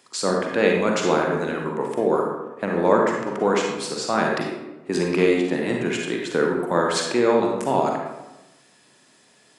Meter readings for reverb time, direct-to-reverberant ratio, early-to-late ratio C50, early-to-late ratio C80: 1.0 s, 0.0 dB, 1.5 dB, 4.5 dB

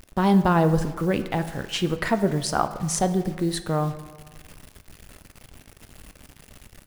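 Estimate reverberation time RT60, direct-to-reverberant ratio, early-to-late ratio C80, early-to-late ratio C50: 1.4 s, 10.0 dB, 14.0 dB, 12.0 dB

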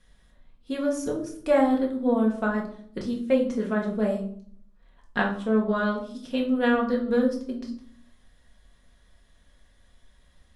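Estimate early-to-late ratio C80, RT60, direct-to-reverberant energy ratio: 12.5 dB, 0.60 s, −1.0 dB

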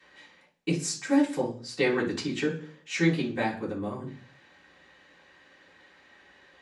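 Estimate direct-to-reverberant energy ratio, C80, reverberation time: −14.5 dB, 15.5 dB, 0.45 s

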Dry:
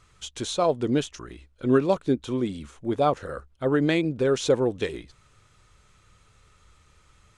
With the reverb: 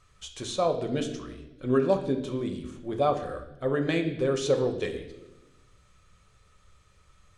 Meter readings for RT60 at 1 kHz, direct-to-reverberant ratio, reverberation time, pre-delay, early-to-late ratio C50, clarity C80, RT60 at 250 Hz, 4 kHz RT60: 0.80 s, 4.5 dB, 1.0 s, 5 ms, 9.0 dB, 11.5 dB, 1.4 s, 0.90 s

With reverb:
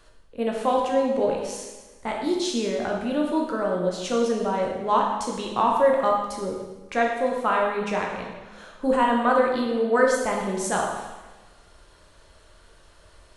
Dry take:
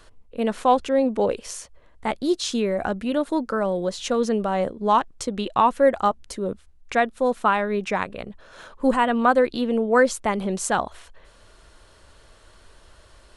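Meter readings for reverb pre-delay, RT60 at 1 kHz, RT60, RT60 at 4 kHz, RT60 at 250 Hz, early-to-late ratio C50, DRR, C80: 6 ms, 1.2 s, 1.2 s, 1.1 s, 1.3 s, 2.5 dB, −1.5 dB, 4.5 dB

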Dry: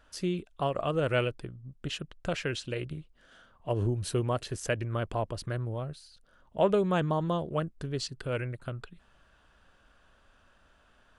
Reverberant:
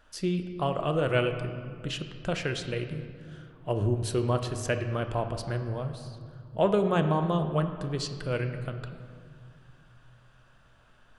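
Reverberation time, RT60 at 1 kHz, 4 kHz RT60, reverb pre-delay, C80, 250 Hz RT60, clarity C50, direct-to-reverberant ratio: 2.2 s, 2.3 s, 1.4 s, 5 ms, 9.5 dB, 3.0 s, 8.5 dB, 6.5 dB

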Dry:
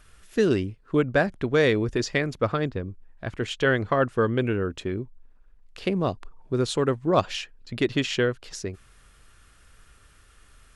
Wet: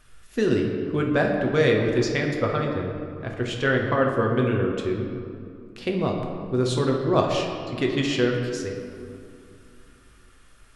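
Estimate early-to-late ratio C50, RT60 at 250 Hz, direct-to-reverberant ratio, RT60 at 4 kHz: 3.5 dB, 3.0 s, 0.0 dB, 1.3 s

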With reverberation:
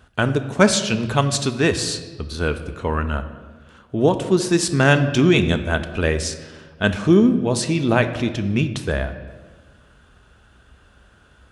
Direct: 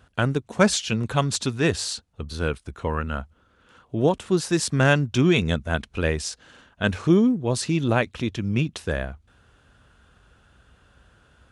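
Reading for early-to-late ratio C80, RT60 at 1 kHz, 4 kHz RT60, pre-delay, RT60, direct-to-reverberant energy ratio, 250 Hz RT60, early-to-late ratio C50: 13.0 dB, 1.3 s, 0.95 s, 3 ms, 1.4 s, 8.5 dB, 1.7 s, 11.5 dB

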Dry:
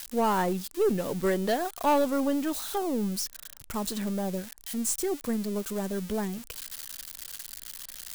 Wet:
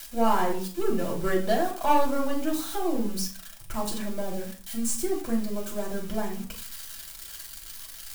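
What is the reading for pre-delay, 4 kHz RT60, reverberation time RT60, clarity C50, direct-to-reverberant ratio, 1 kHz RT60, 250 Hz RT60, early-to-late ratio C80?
3 ms, 0.35 s, 0.40 s, 9.0 dB, −2.0 dB, 0.45 s, 0.55 s, 13.0 dB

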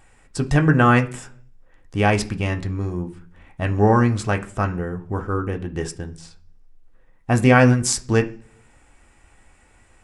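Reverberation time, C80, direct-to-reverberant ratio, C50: 0.50 s, 21.0 dB, 4.0 dB, 16.5 dB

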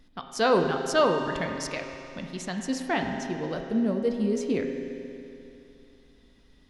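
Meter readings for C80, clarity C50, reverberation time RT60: 5.5 dB, 4.5 dB, 2.8 s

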